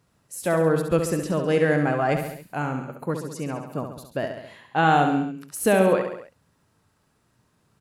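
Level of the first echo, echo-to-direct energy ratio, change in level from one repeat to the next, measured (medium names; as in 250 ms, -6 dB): -7.0 dB, -5.0 dB, -4.5 dB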